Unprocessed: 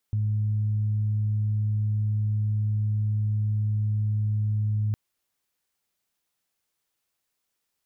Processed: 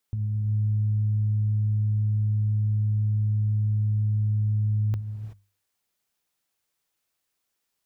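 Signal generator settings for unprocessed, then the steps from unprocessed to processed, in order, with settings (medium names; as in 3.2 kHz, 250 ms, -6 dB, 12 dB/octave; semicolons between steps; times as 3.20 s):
steady additive tone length 4.81 s, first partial 106 Hz, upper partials -19.5 dB, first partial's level -22 dB
hum notches 50/100/150/200 Hz; gated-style reverb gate 400 ms rising, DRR 8 dB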